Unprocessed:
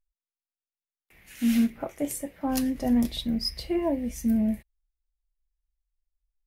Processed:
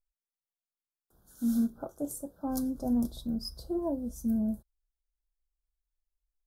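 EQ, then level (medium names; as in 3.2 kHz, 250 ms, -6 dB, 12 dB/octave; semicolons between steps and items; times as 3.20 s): elliptic band-stop 1.5–3.3 kHz, stop band 40 dB; peaking EQ 3 kHz -15 dB 1 oct; -5.0 dB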